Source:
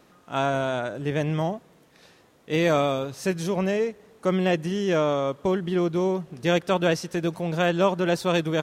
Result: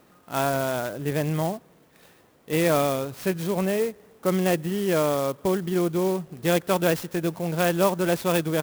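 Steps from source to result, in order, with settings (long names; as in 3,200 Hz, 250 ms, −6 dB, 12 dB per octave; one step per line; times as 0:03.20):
converter with an unsteady clock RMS 0.045 ms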